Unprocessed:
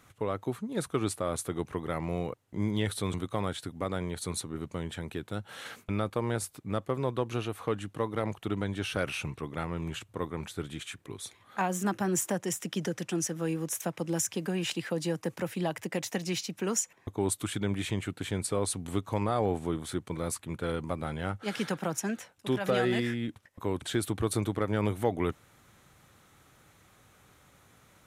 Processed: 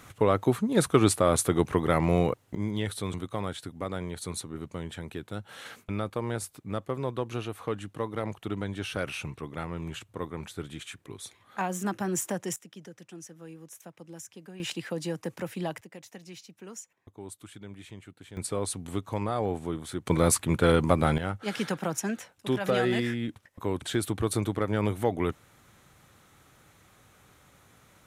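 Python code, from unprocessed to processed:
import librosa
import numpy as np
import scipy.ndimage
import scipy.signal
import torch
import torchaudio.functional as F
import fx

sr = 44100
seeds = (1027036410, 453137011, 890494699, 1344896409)

y = fx.gain(x, sr, db=fx.steps((0.0, 9.0), (2.55, -1.0), (12.56, -14.0), (14.6, -1.5), (15.81, -13.5), (18.37, -1.0), (20.06, 11.0), (21.18, 1.5)))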